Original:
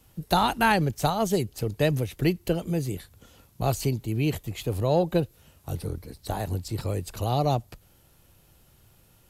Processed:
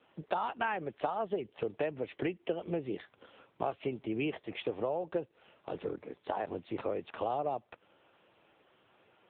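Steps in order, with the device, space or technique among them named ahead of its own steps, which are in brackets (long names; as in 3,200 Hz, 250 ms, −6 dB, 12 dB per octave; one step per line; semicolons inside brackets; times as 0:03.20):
voicemail (band-pass filter 380–3,000 Hz; downward compressor 10 to 1, threshold −34 dBFS, peak gain reduction 16.5 dB; level +5 dB; AMR narrowband 6.7 kbit/s 8,000 Hz)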